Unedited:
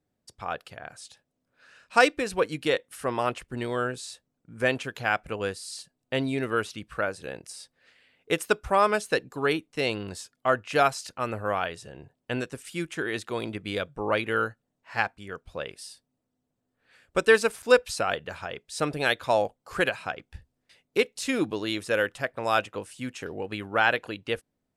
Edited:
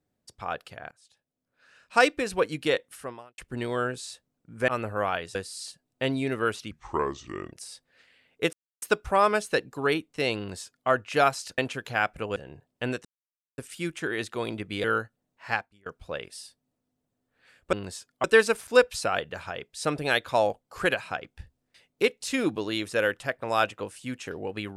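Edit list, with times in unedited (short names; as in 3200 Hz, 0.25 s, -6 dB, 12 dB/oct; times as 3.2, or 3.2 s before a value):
0.91–2.15 fade in, from -21 dB
2.89–3.38 fade out quadratic
4.68–5.46 swap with 11.17–11.84
6.82–7.41 speed 72%
8.41 insert silence 0.29 s
9.97–10.48 copy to 17.19
12.53 insert silence 0.53 s
13.79–14.3 cut
14.97–15.32 fade out quadratic, to -23.5 dB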